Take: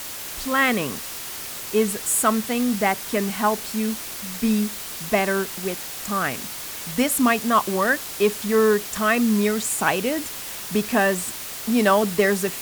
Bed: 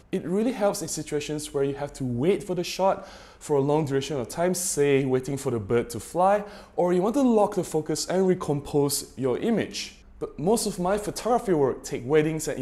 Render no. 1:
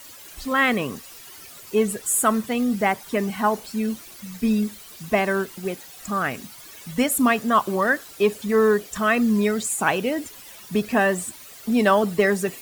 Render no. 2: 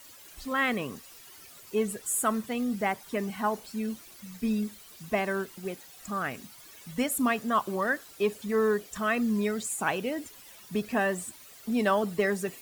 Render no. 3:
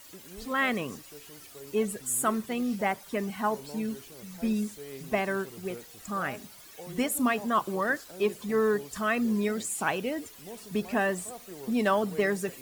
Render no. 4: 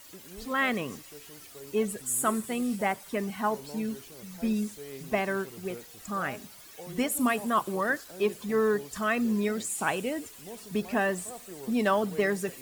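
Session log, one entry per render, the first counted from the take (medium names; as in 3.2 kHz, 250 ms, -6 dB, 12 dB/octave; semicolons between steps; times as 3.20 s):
noise reduction 13 dB, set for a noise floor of -34 dBFS
trim -7.5 dB
add bed -22 dB
feedback echo behind a high-pass 91 ms, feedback 81%, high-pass 5.6 kHz, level -14 dB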